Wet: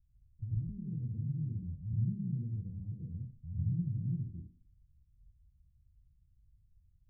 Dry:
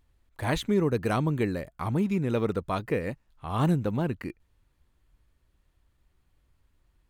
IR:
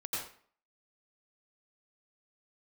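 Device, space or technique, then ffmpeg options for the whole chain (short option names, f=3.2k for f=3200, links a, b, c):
club heard from the street: -filter_complex "[0:a]alimiter=limit=-23.5dB:level=0:latency=1:release=398,lowpass=f=150:w=0.5412,lowpass=f=150:w=1.3066[a];[1:a]atrim=start_sample=2205[b];[a][b]afir=irnorm=-1:irlink=0,volume=1.5dB"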